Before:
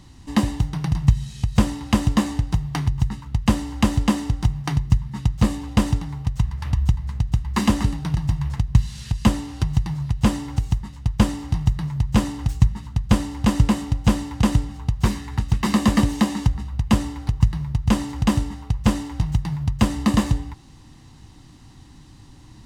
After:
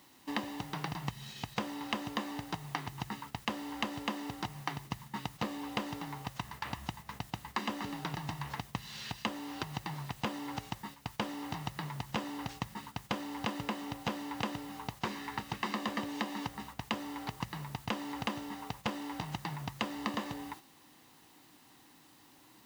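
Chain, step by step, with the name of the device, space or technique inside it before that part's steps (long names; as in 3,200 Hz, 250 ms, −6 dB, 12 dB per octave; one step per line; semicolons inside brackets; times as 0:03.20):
baby monitor (band-pass filter 370–4,100 Hz; downward compressor, threshold −34 dBFS, peak gain reduction 14.5 dB; white noise bed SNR 18 dB; noise gate −48 dBFS, range −7 dB)
level +1 dB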